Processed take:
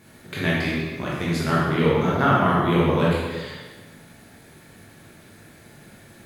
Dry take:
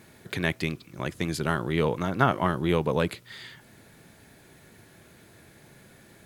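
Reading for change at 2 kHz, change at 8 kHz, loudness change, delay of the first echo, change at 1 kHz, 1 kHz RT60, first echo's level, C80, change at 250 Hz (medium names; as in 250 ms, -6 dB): +5.5 dB, +1.5 dB, +5.5 dB, no echo, +6.0 dB, 1.4 s, no echo, 1.0 dB, +6.5 dB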